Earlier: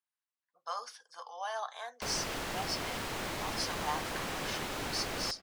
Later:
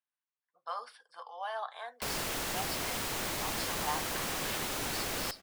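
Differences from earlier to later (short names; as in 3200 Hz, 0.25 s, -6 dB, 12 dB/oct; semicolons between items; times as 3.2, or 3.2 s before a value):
speech: add running mean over 7 samples; master: remove LPF 3500 Hz 6 dB/oct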